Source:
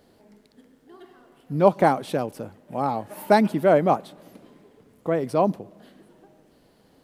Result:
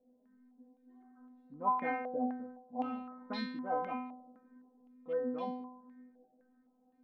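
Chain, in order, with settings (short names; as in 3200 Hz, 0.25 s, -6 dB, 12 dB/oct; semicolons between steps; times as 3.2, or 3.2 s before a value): Wiener smoothing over 15 samples; bell 250 Hz +7.5 dB 0.8 oct; metallic resonator 250 Hz, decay 0.72 s, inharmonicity 0.002; stepped low-pass 3.9 Hz 630–3600 Hz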